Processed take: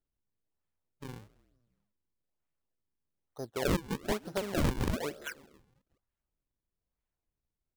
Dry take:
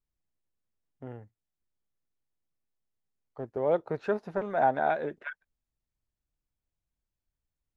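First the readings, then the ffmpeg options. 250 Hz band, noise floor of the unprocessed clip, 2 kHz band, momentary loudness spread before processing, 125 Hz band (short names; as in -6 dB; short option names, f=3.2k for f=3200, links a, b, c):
+3.5 dB, under -85 dBFS, -3.5 dB, 19 LU, +7.0 dB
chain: -filter_complex "[0:a]asplit=5[a][b][c][d][e];[b]adelay=162,afreqshift=-79,volume=-21dB[f];[c]adelay=324,afreqshift=-158,volume=-25.9dB[g];[d]adelay=486,afreqshift=-237,volume=-30.8dB[h];[e]adelay=648,afreqshift=-316,volume=-35.6dB[i];[a][f][g][h][i]amix=inputs=5:normalize=0,acrusher=samples=39:mix=1:aa=0.000001:lfo=1:lforange=62.4:lforate=1.1,aeval=exprs='(mod(9.44*val(0)+1,2)-1)/9.44':c=same,volume=-2.5dB"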